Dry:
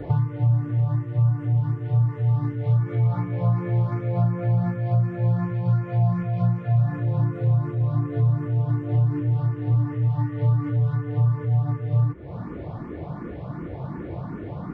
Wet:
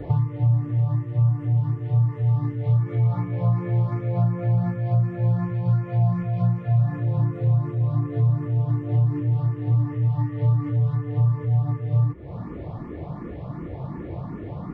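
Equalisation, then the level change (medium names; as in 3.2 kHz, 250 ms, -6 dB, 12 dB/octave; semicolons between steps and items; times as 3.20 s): bass shelf 68 Hz +5.5 dB; band-stop 1.5 kHz, Q 7.9; -1.0 dB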